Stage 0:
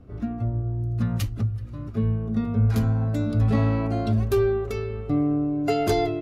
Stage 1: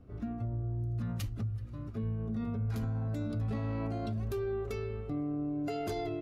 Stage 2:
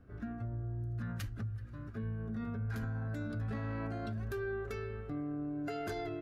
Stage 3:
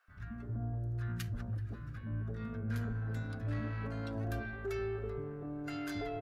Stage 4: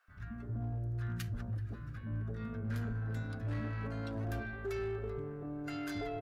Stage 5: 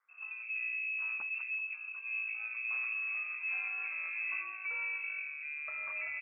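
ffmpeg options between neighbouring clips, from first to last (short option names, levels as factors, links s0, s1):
-af "alimiter=limit=0.0891:level=0:latency=1:release=37,volume=0.447"
-af "equalizer=f=1600:t=o:w=0.45:g=14.5,volume=0.631"
-filter_complex "[0:a]aeval=exprs='0.0376*(cos(1*acos(clip(val(0)/0.0376,-1,1)))-cos(1*PI/2))+0.00188*(cos(5*acos(clip(val(0)/0.0376,-1,1)))-cos(5*PI/2))':c=same,acrossover=split=220|940[s0][s1][s2];[s0]adelay=80[s3];[s1]adelay=330[s4];[s3][s4][s2]amix=inputs=3:normalize=0,volume=1.12"
-af "asoftclip=type=hard:threshold=0.0266"
-af "adynamicsmooth=sensitivity=6.5:basefreq=1100,lowpass=f=2300:t=q:w=0.5098,lowpass=f=2300:t=q:w=0.6013,lowpass=f=2300:t=q:w=0.9,lowpass=f=2300:t=q:w=2.563,afreqshift=-2700"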